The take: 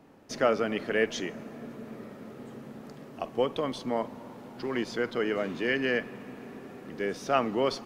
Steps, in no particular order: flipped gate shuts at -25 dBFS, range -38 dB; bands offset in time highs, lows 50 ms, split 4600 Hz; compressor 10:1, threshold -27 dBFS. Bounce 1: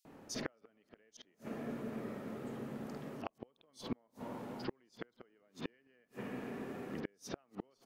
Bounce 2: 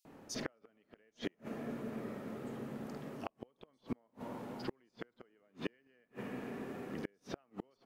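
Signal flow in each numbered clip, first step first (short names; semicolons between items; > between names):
compressor > flipped gate > bands offset in time; compressor > bands offset in time > flipped gate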